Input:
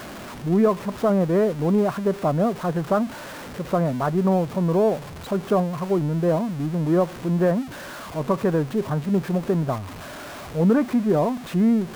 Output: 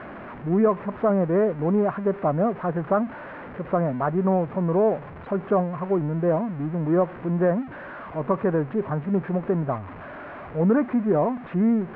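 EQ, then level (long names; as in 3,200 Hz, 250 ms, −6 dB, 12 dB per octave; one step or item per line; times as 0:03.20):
low-pass filter 2,100 Hz 24 dB per octave
low-shelf EQ 200 Hz −4.5 dB
0.0 dB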